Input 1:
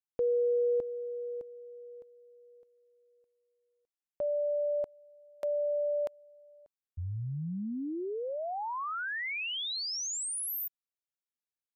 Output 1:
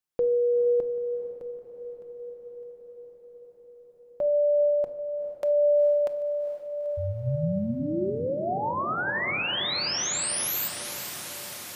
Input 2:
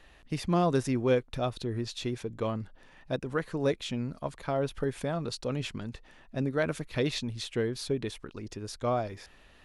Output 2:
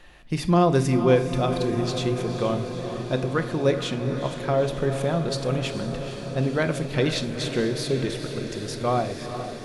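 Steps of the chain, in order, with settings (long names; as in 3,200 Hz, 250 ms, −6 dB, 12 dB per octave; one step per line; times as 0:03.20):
feedback delay with all-pass diffusion 453 ms, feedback 75%, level −9.5 dB
rectangular room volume 1,000 cubic metres, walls furnished, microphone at 0.92 metres
level +5.5 dB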